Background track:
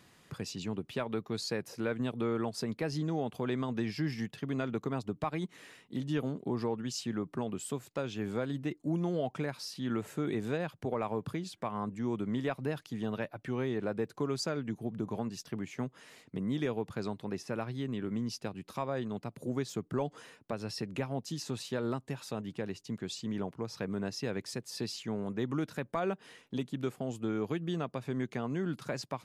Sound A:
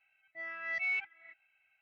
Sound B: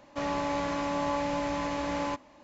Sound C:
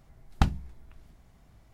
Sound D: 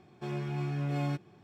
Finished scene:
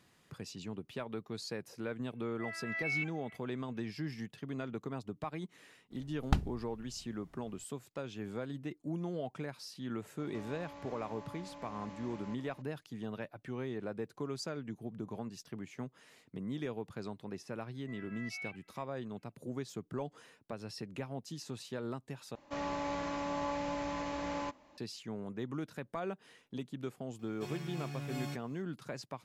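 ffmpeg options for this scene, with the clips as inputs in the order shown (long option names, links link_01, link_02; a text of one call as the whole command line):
ffmpeg -i bed.wav -i cue0.wav -i cue1.wav -i cue2.wav -i cue3.wav -filter_complex "[1:a]asplit=2[link_01][link_02];[2:a]asplit=2[link_03][link_04];[0:a]volume=-6dB[link_05];[link_03]acompressor=threshold=-47dB:ratio=5:attack=11:release=44:knee=1:detection=rms[link_06];[4:a]crystalizer=i=5:c=0[link_07];[link_05]asplit=2[link_08][link_09];[link_08]atrim=end=22.354[link_10];[link_04]atrim=end=2.43,asetpts=PTS-STARTPTS,volume=-6.5dB[link_11];[link_09]atrim=start=24.776[link_12];[link_01]atrim=end=1.81,asetpts=PTS-STARTPTS,volume=-2.5dB,afade=type=in:duration=0.004:curve=hsin,afade=type=out:start_time=1.806:duration=0.004:curve=hsin,adelay=2040[link_13];[3:a]atrim=end=1.73,asetpts=PTS-STARTPTS,volume=-6dB,afade=type=in:duration=0.004:curve=hsin,afade=type=out:start_time=1.726:duration=0.004:curve=hsin,adelay=5910[link_14];[link_06]atrim=end=2.43,asetpts=PTS-STARTPTS,volume=-4dB,afade=type=in:duration=0.004:curve=hsin,afade=type=out:start_time=2.426:duration=0.004:curve=hsin,adelay=10190[link_15];[link_02]atrim=end=1.81,asetpts=PTS-STARTPTS,volume=-11.5dB,afade=type=in:duration=0.004:curve=hsin,afade=type=out:start_time=1.806:duration=0.004:curve=hsin,adelay=17510[link_16];[link_07]atrim=end=1.43,asetpts=PTS-STARTPTS,volume=-9.5dB,afade=type=in:duration=0.004:curve=hsin,afade=type=out:start_time=1.426:duration=0.004:curve=hsin,adelay=27190[link_17];[link_10][link_11]acrossfade=duration=0.004:curve1=hsin:curve2=hsin[link_18];[link_18][link_12]acrossfade=duration=0.004:curve1=hsin:curve2=hsin[link_19];[link_19][link_13][link_14][link_15][link_16][link_17]amix=inputs=6:normalize=0" out.wav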